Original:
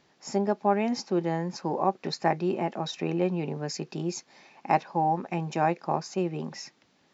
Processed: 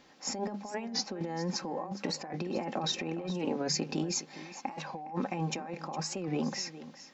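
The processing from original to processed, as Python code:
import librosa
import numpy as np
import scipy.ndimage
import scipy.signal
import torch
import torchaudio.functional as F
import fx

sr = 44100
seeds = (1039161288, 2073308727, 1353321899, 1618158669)

y = fx.hum_notches(x, sr, base_hz=50, count=4)
y = y + 0.42 * np.pad(y, (int(3.8 * sr / 1000.0), 0))[:len(y)]
y = fx.over_compress(y, sr, threshold_db=-34.0, ratio=-1.0)
y = y + 10.0 ** (-15.0 / 20.0) * np.pad(y, (int(412 * sr / 1000.0), 0))[:len(y)]
y = fx.record_warp(y, sr, rpm=45.0, depth_cents=100.0)
y = F.gain(torch.from_numpy(y), -1.5).numpy()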